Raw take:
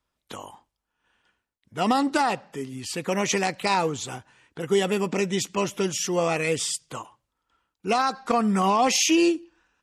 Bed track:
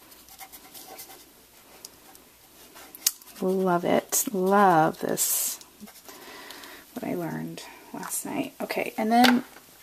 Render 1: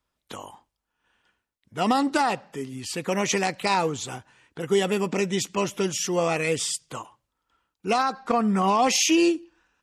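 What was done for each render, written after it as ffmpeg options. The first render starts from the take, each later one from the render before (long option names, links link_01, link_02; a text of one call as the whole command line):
ffmpeg -i in.wav -filter_complex "[0:a]asettb=1/sr,asplit=3[link_01][link_02][link_03];[link_01]atrim=end=8.034[link_04];[link_02]atrim=start=8.03:end=8.68,asetpts=PTS-STARTPTS,afade=type=in:duration=0.004:curve=qsin,afade=type=out:start_time=0.646:duration=0.004:curve=qsin,highshelf=frequency=3600:gain=-7.5[link_05];[link_03]atrim=start=8.676[link_06];[link_04][link_05]acrossfade=duration=0.004:curve1=hsin:curve2=qsin[link_07];[link_07][link_06]acrossfade=duration=0.004:curve1=qsin:curve2=hsin" out.wav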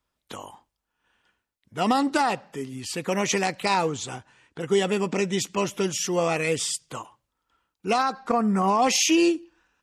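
ffmpeg -i in.wav -filter_complex "[0:a]asettb=1/sr,asplit=3[link_01][link_02][link_03];[link_01]atrim=end=3.854[link_04];[link_02]atrim=start=3.85:end=5.32,asetpts=PTS-STARTPTS,afade=type=in:duration=0.004:curve=qsin,afade=type=out:start_time=1.466:duration=0.004:curve=qsin,lowpass=frequency=10000:width=0.5412,lowpass=frequency=10000:width=1.3066[link_05];[link_03]atrim=start=5.316[link_06];[link_04][link_05]acrossfade=duration=0.004:curve1=hsin:curve2=qsin[link_07];[link_07][link_06]acrossfade=duration=0.004:curve1=qsin:curve2=hsin,asettb=1/sr,asplit=3[link_08][link_09][link_10];[link_08]atrim=end=8.294[link_11];[link_09]atrim=start=8.29:end=8.82,asetpts=PTS-STARTPTS,afade=type=in:duration=0.004:curve=qsin,afade=type=out:start_time=0.526:duration=0.004:curve=qsin,equalizer=frequency=3300:width=1.8:gain=-11[link_12];[link_10]atrim=start=8.816[link_13];[link_11][link_12]acrossfade=duration=0.004:curve1=hsin:curve2=qsin[link_14];[link_14][link_13]acrossfade=duration=0.004:curve1=qsin:curve2=hsin" out.wav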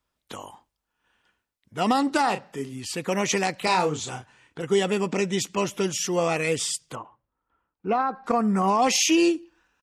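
ffmpeg -i in.wav -filter_complex "[0:a]asplit=3[link_01][link_02][link_03];[link_01]afade=type=out:start_time=2.23:duration=0.02[link_04];[link_02]asplit=2[link_05][link_06];[link_06]adelay=36,volume=-9.5dB[link_07];[link_05][link_07]amix=inputs=2:normalize=0,afade=type=in:start_time=2.23:duration=0.02,afade=type=out:start_time=2.71:duration=0.02[link_08];[link_03]afade=type=in:start_time=2.71:duration=0.02[link_09];[link_04][link_08][link_09]amix=inputs=3:normalize=0,asettb=1/sr,asplit=3[link_10][link_11][link_12];[link_10]atrim=end=3.594[link_13];[link_11]atrim=start=3.59:end=4.62,asetpts=PTS-STARTPTS,afade=type=in:duration=0.004:curve=qsin,afade=type=out:start_time=1.026:duration=0.004:curve=qsin,asplit=2[link_14][link_15];[link_15]adelay=33,volume=-6.5dB[link_16];[link_14][link_16]amix=inputs=2:normalize=0,atrim=end_sample=45423[link_17];[link_12]atrim=start=4.616[link_18];[link_13][link_17]acrossfade=duration=0.004:curve1=hsin:curve2=qsin[link_19];[link_19][link_18]acrossfade=duration=0.004:curve1=qsin:curve2=hsin,asettb=1/sr,asplit=3[link_20][link_21][link_22];[link_20]atrim=end=6.954[link_23];[link_21]atrim=start=6.95:end=8.24,asetpts=PTS-STARTPTS,afade=type=in:duration=0.004:curve=qsin,afade=type=out:start_time=1.286:duration=0.004:curve=qsin,lowpass=1500[link_24];[link_22]atrim=start=8.236[link_25];[link_23][link_24]acrossfade=duration=0.004:curve1=hsin:curve2=qsin[link_26];[link_26][link_25]acrossfade=duration=0.004:curve1=qsin:curve2=hsin" out.wav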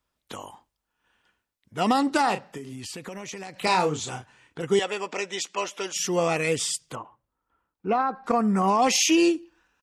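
ffmpeg -i in.wav -filter_complex "[0:a]asettb=1/sr,asplit=3[link_01][link_02][link_03];[link_01]atrim=end=2.574[link_04];[link_02]atrim=start=2.57:end=3.6,asetpts=PTS-STARTPTS,afade=type=in:duration=0.004:curve=qsin,afade=type=out:start_time=1.026:duration=0.004:curve=qsin,acompressor=threshold=-33dB:ratio=12:attack=3.2:release=140:knee=1:detection=peak[link_05];[link_03]atrim=start=3.596[link_06];[link_04][link_05]acrossfade=duration=0.004:curve1=hsin:curve2=qsin[link_07];[link_07][link_06]acrossfade=duration=0.004:curve1=qsin:curve2=hsin,asettb=1/sr,asplit=3[link_08][link_09][link_10];[link_08]atrim=end=4.794[link_11];[link_09]atrim=start=4.79:end=5.96,asetpts=PTS-STARTPTS,afade=type=in:duration=0.004:curve=qsin,afade=type=out:start_time=1.166:duration=0.004:curve=qsin,highpass=560,lowpass=7500[link_12];[link_10]atrim=start=5.956[link_13];[link_11][link_12]acrossfade=duration=0.004:curve1=hsin:curve2=qsin[link_14];[link_14][link_13]acrossfade=duration=0.004:curve1=qsin:curve2=hsin" out.wav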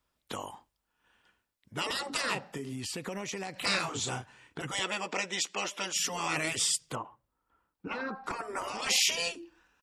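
ffmpeg -i in.wav -af "afftfilt=real='re*lt(hypot(re,im),0.178)':imag='im*lt(hypot(re,im),0.178)':win_size=1024:overlap=0.75,bandreject=frequency=6300:width=25" out.wav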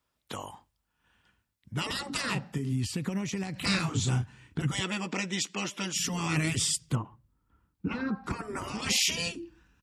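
ffmpeg -i in.wav -af "asubboost=boost=9:cutoff=200,highpass=56" out.wav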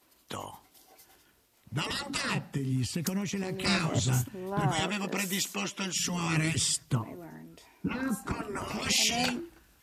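ffmpeg -i in.wav -i bed.wav -filter_complex "[1:a]volume=-14dB[link_01];[0:a][link_01]amix=inputs=2:normalize=0" out.wav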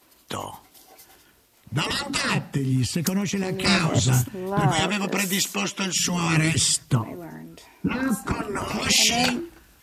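ffmpeg -i in.wav -af "volume=7.5dB" out.wav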